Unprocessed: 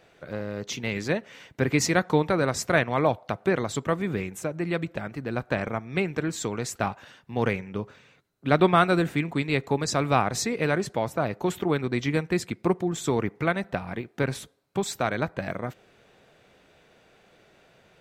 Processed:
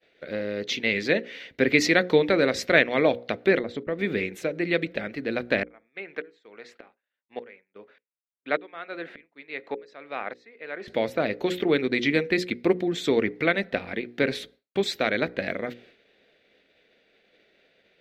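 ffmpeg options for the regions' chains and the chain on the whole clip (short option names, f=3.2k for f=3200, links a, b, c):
-filter_complex "[0:a]asettb=1/sr,asplit=3[a][b][c];[a]atrim=end=3.594[d];[b]atrim=start=3.59:end=3.99,asetpts=PTS-STARTPTS,afade=t=in:d=0.004:c=qsin,afade=t=out:st=0.396:d=0.004:c=qsin,agate=range=-29dB:threshold=-37dB:ratio=16:release=100:detection=peak,lowpass=f=1k:p=1,acompressor=threshold=-29dB:ratio=2:attack=3.2:release=140:knee=1:detection=peak[e];[c]atrim=start=3.986[f];[d][e]acrossfade=d=0.004:c1=hsin:c2=qsin[g];[g][f]acrossfade=d=0.004:c1=qsin:c2=hsin,asettb=1/sr,asplit=3[h][i][j];[h]atrim=end=5.634[k];[i]atrim=start=5.63:end=10.88,asetpts=PTS-STARTPTS,afade=t=in:d=0.004:c=qsin,afade=t=out:st=5.246:d=0.004:c=qsin,bandpass=f=1.1k:t=q:w=0.95,aeval=exprs='val(0)*pow(10,-26*if(lt(mod(-1.7*n/s,1),2*abs(-1.7)/1000),1-mod(-1.7*n/s,1)/(2*abs(-1.7)/1000),(mod(-1.7*n/s,1)-2*abs(-1.7)/1000)/(1-2*abs(-1.7)/1000))/20)':c=same[l];[j]atrim=start=10.876[m];[k][l]acrossfade=d=0.004:c1=hsin:c2=qsin[n];[n][m]acrossfade=d=0.004:c1=qsin:c2=hsin,bandreject=f=60:t=h:w=6,bandreject=f=120:t=h:w=6,bandreject=f=180:t=h:w=6,bandreject=f=240:t=h:w=6,bandreject=f=300:t=h:w=6,bandreject=f=360:t=h:w=6,bandreject=f=420:t=h:w=6,bandreject=f=480:t=h:w=6,bandreject=f=540:t=h:w=6,agate=range=-33dB:threshold=-51dB:ratio=3:detection=peak,equalizer=f=125:t=o:w=1:g=-7,equalizer=f=250:t=o:w=1:g=7,equalizer=f=500:t=o:w=1:g=9,equalizer=f=1k:t=o:w=1:g=-8,equalizer=f=2k:t=o:w=1:g=11,equalizer=f=4k:t=o:w=1:g=11,equalizer=f=8k:t=o:w=1:g=-8,volume=-3.5dB"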